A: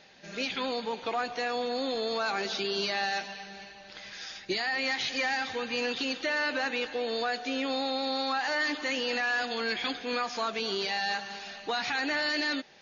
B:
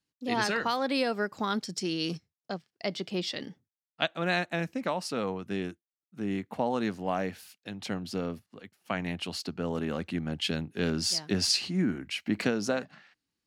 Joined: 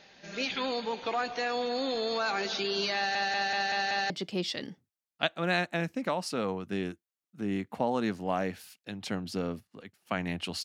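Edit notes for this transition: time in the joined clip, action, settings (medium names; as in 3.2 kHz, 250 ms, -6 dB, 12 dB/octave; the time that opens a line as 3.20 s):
A
2.96 s: stutter in place 0.19 s, 6 plays
4.10 s: go over to B from 2.89 s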